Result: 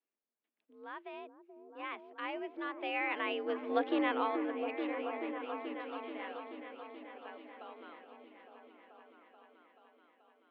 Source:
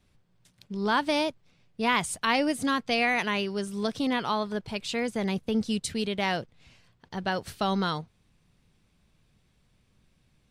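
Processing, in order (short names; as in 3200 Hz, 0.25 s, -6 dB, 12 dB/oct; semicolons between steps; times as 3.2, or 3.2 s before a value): Doppler pass-by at 3.77, 8 m/s, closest 2.2 m; mistuned SSB +53 Hz 250–2900 Hz; repeats that get brighter 0.432 s, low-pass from 400 Hz, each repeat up 1 oct, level -3 dB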